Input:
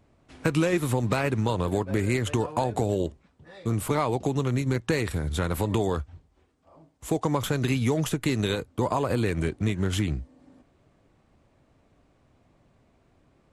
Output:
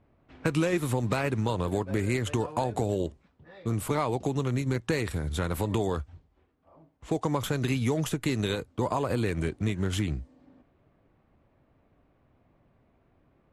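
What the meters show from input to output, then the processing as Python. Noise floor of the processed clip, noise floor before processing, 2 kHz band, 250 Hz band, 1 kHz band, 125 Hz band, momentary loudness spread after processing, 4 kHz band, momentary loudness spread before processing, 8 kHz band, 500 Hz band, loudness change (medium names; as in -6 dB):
-67 dBFS, -65 dBFS, -2.5 dB, -2.5 dB, -2.5 dB, -2.5 dB, 5 LU, -2.5 dB, 5 LU, -2.5 dB, -2.5 dB, -2.5 dB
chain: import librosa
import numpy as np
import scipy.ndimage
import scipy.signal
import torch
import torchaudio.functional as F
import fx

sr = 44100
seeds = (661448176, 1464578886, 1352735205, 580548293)

y = fx.env_lowpass(x, sr, base_hz=2500.0, full_db=-26.0)
y = y * 10.0 ** (-2.5 / 20.0)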